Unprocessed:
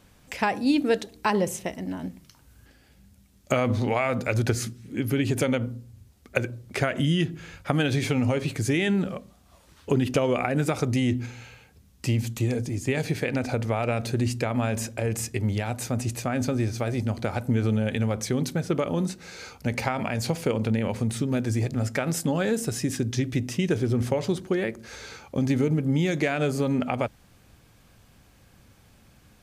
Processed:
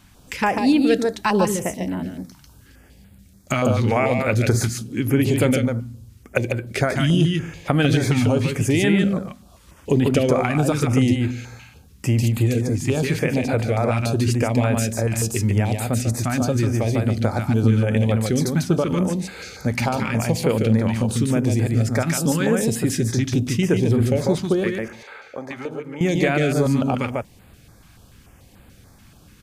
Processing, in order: 24.88–26.01 s: three-band isolator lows -24 dB, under 480 Hz, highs -16 dB, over 2.6 kHz; in parallel at -10.5 dB: saturation -20 dBFS, distortion -14 dB; on the sum: delay 146 ms -4 dB; step-sequenced notch 6.9 Hz 480–5800 Hz; trim +3.5 dB

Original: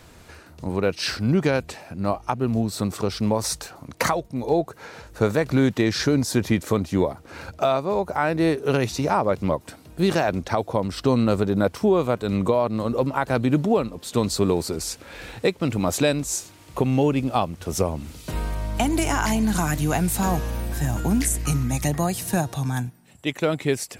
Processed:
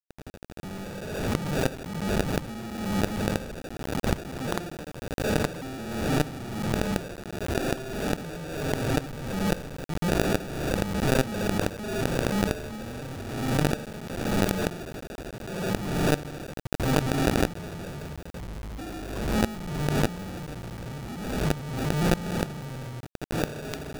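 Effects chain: fifteen-band graphic EQ 160 Hz +9 dB, 1 kHz +9 dB, 2.5 kHz +7 dB; flutter echo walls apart 7 m, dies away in 0.58 s; compression 1.5:1, threshold -23 dBFS, peak gain reduction 6 dB; sample-and-hold 42×; granulator 98 ms, grains 13 per s, pitch spread up and down by 0 st; companded quantiser 2-bit; swell ahead of each attack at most 42 dB/s; trim -10.5 dB

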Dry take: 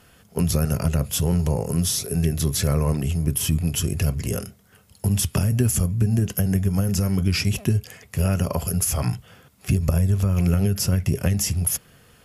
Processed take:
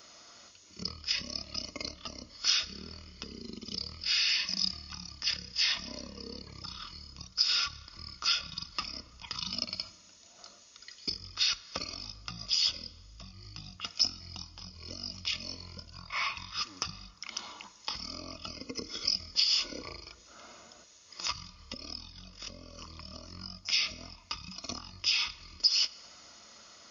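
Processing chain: wide varispeed 0.455×; compression 4:1, threshold -31 dBFS, peak gain reduction 14.5 dB; RIAA curve recording; comb of notches 790 Hz; on a send: reverberation RT60 3.0 s, pre-delay 47 ms, DRR 18.5 dB

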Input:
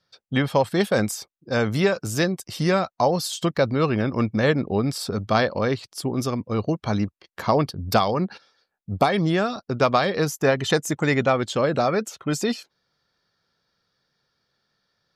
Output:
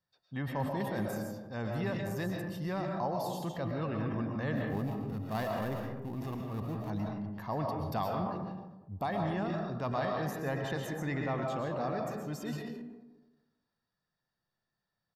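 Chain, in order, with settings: 4.55–6.90 s: dead-time distortion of 0.16 ms; peaking EQ 13 kHz +15 dB 0.33 oct; feedback comb 350 Hz, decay 0.93 s, mix 50%; reverberation RT60 1.1 s, pre-delay 90 ms, DRR 2 dB; transient shaper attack -4 dB, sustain +5 dB; treble shelf 3 kHz -12 dB; comb 1.1 ms, depth 40%; trim -8 dB

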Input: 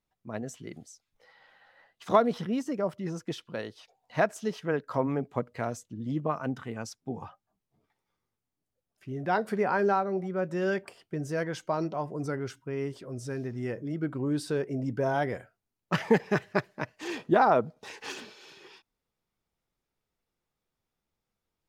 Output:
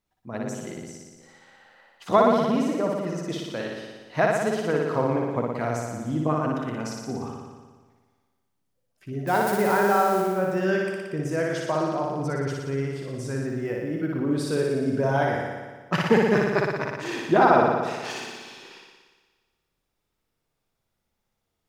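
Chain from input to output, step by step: 9.27–10.22 s: zero-crossing glitches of -31 dBFS; 10.85–11.49 s: band-stop 4.3 kHz, Q 7.5; flutter echo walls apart 10.1 m, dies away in 1.4 s; 13.46–14.36 s: decimation joined by straight lines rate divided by 3×; trim +2.5 dB

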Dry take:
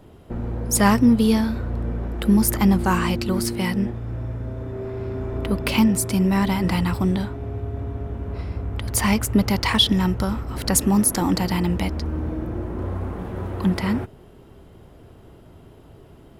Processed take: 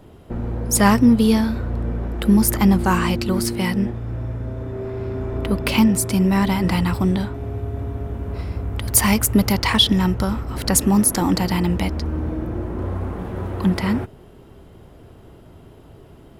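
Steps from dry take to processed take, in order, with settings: 7.34–9.53 s: treble shelf 9 kHz +11 dB; trim +2 dB

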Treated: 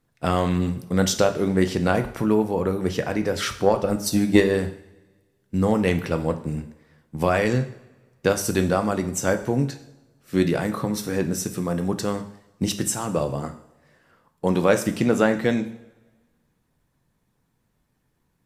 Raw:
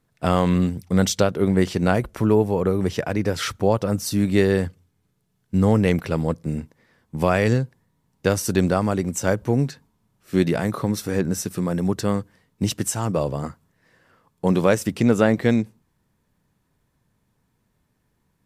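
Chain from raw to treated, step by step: harmonic-percussive split harmonic -4 dB; 3.64–4.55 s: transient shaper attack +11 dB, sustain -6 dB; two-slope reverb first 0.58 s, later 1.5 s, from -17 dB, DRR 7 dB

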